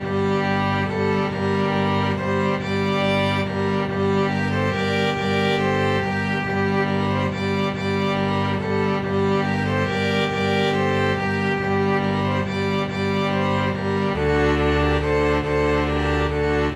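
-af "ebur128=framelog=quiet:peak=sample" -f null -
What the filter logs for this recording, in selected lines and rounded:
Integrated loudness:
  I:         -21.2 LUFS
  Threshold: -31.2 LUFS
Loudness range:
  LRA:         1.2 LU
  Threshold: -41.2 LUFS
  LRA low:   -21.7 LUFS
  LRA high:  -20.5 LUFS
Sample peak:
  Peak:       -7.7 dBFS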